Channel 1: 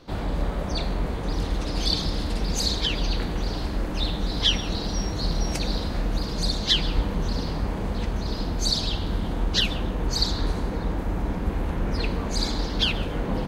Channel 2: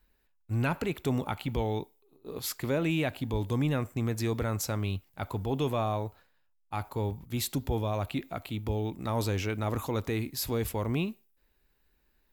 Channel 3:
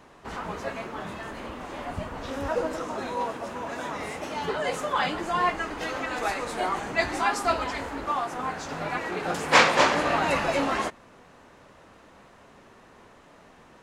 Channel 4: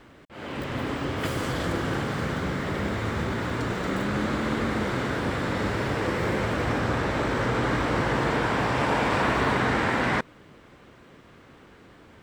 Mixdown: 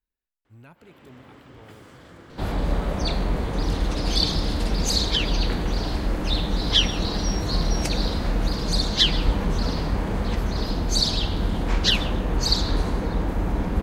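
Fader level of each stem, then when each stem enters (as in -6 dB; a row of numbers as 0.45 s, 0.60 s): +2.5 dB, -20.0 dB, -18.5 dB, -19.0 dB; 2.30 s, 0.00 s, 2.15 s, 0.45 s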